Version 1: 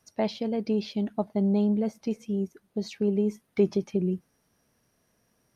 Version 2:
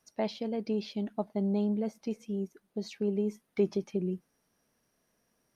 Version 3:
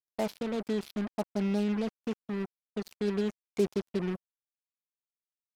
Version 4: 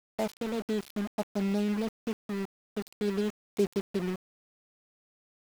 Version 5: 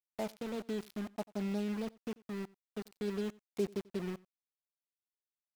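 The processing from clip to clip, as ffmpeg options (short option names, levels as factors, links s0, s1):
-af "equalizer=f=93:t=o:w=1.1:g=-8.5,volume=0.631"
-af "acrusher=bits=5:mix=0:aa=0.5"
-af "aeval=exprs='val(0)*gte(abs(val(0)),0.0126)':c=same"
-af "aecho=1:1:90:0.0668,volume=0.473"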